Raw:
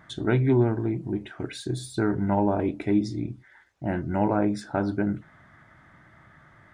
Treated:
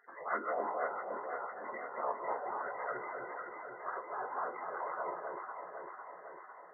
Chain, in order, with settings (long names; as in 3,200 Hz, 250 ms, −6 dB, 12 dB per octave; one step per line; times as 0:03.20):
partials spread apart or drawn together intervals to 78%
gate on every frequency bin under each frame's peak −20 dB weak
high-pass filter 460 Hz 12 dB per octave
in parallel at +0.5 dB: downward compressor, threshold −54 dBFS, peak gain reduction 17 dB
on the sum: linear-phase brick-wall low-pass 2,100 Hz
on a send: delay that swaps between a low-pass and a high-pass 251 ms, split 870 Hz, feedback 79%, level −2 dB
on the sum: level +4.5 dB